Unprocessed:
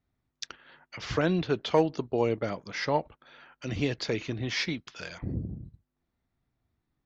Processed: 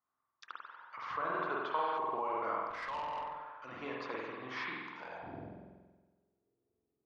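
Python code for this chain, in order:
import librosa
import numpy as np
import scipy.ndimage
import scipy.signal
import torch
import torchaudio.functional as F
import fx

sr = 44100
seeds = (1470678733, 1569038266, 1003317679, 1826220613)

p1 = fx.filter_sweep_bandpass(x, sr, from_hz=1100.0, to_hz=410.0, start_s=4.7, end_s=6.12, q=6.5)
p2 = fx.rev_spring(p1, sr, rt60_s=1.3, pass_ms=(46,), chirp_ms=35, drr_db=-3.0)
p3 = fx.over_compress(p2, sr, threshold_db=-42.0, ratio=-0.5)
p4 = p2 + (p3 * librosa.db_to_amplitude(0.0))
p5 = fx.spec_repair(p4, sr, seeds[0], start_s=1.75, length_s=0.21, low_hz=1100.0, high_hz=5000.0, source='before')
y = fx.tube_stage(p5, sr, drive_db=35.0, bias=0.25, at=(2.7, 3.72))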